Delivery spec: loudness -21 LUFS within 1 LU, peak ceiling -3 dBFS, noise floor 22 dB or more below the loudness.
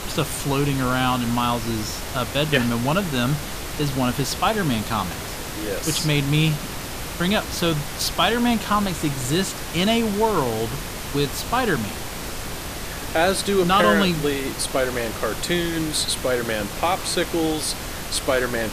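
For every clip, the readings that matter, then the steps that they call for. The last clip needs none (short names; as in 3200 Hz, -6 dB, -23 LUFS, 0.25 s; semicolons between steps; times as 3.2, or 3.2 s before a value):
noise floor -32 dBFS; noise floor target -45 dBFS; loudness -22.5 LUFS; peak -4.5 dBFS; loudness target -21.0 LUFS
-> noise print and reduce 13 dB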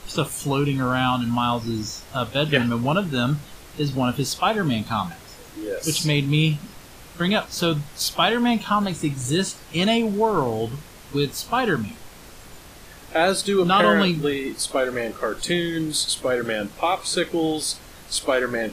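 noise floor -44 dBFS; noise floor target -45 dBFS
-> noise print and reduce 6 dB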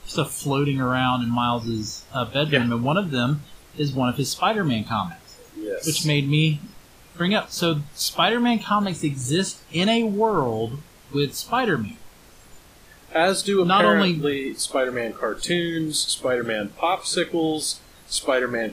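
noise floor -50 dBFS; loudness -22.5 LUFS; peak -5.0 dBFS; loudness target -21.0 LUFS
-> gain +1.5 dB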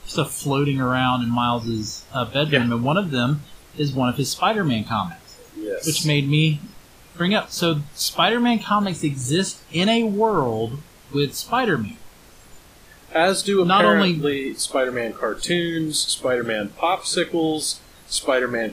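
loudness -21.0 LUFS; peak -3.5 dBFS; noise floor -48 dBFS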